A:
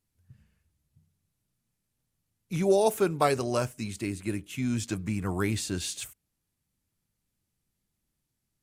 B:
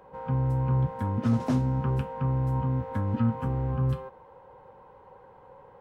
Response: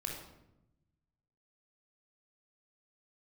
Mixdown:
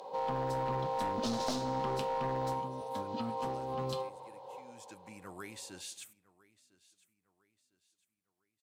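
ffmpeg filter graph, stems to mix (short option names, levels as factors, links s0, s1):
-filter_complex "[0:a]alimiter=limit=0.133:level=0:latency=1:release=380,volume=0.282,afade=t=in:st=4.66:d=0.62:silence=0.266073,asplit=4[s0][s1][s2][s3];[s1]volume=0.075[s4];[s2]volume=0.0841[s5];[1:a]firequalizer=gain_entry='entry(780,0);entry(1500,-18);entry(4000,12);entry(11000,1)':delay=0.05:min_phase=1,asplit=2[s6][s7];[s7]highpass=f=720:p=1,volume=12.6,asoftclip=type=tanh:threshold=0.668[s8];[s6][s8]amix=inputs=2:normalize=0,lowpass=f=1600:p=1,volume=0.501,aemphasis=mode=production:type=cd,volume=0.75,asplit=2[s9][s10];[s10]volume=0.0708[s11];[s3]apad=whole_len=260516[s12];[s9][s12]sidechaincompress=threshold=0.002:ratio=8:attack=16:release=435[s13];[2:a]atrim=start_sample=2205[s14];[s4][s11]amix=inputs=2:normalize=0[s15];[s15][s14]afir=irnorm=-1:irlink=0[s16];[s5]aecho=0:1:1004|2008|3012|4016|5020:1|0.37|0.137|0.0507|0.0187[s17];[s0][s13][s16][s17]amix=inputs=4:normalize=0,highpass=f=560:p=1,aeval=exprs='clip(val(0),-1,0.0335)':c=same,acompressor=threshold=0.0316:ratio=6"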